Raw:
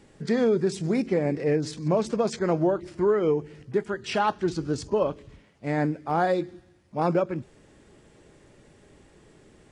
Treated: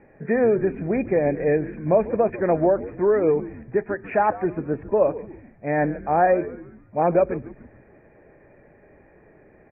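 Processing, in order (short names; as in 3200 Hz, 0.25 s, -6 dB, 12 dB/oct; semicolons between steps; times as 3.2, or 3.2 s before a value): rippled Chebyshev low-pass 2500 Hz, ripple 9 dB; frequency-shifting echo 0.144 s, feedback 43%, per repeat -110 Hz, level -16 dB; gain +8 dB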